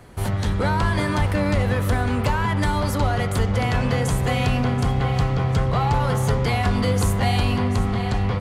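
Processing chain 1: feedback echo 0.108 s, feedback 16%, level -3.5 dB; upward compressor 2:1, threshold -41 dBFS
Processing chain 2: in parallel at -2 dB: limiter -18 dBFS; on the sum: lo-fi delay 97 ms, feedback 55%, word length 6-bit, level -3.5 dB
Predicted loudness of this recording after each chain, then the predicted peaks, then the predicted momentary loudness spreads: -20.5, -17.0 LUFS; -5.5, -4.5 dBFS; 2, 3 LU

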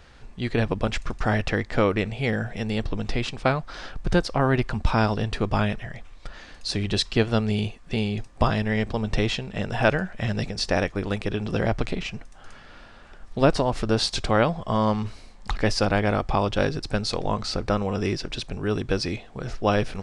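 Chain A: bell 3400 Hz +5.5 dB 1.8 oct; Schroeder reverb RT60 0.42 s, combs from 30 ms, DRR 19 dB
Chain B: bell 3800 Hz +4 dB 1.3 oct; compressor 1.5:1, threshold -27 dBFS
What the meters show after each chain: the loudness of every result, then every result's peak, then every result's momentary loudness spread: -24.0, -28.0 LUFS; -3.0, -9.5 dBFS; 8, 10 LU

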